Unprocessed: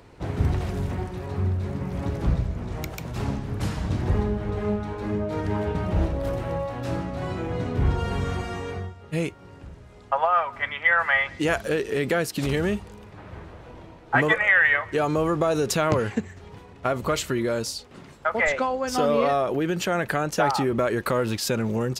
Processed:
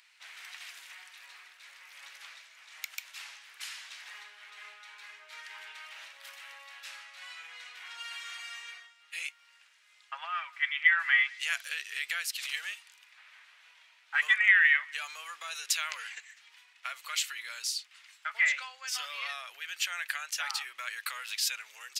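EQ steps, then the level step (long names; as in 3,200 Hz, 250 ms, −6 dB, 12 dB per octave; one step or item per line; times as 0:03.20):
four-pole ladder high-pass 1,700 Hz, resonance 25%
+4.5 dB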